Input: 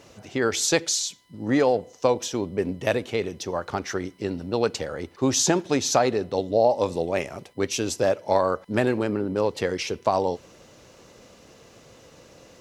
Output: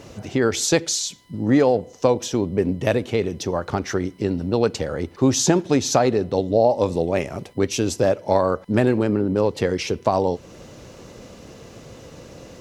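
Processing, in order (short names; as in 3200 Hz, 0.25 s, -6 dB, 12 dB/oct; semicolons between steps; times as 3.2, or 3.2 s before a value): low shelf 410 Hz +8 dB; in parallel at +1 dB: compressor, threshold -31 dBFS, peak gain reduction 18 dB; on the sum: gain -1.5 dB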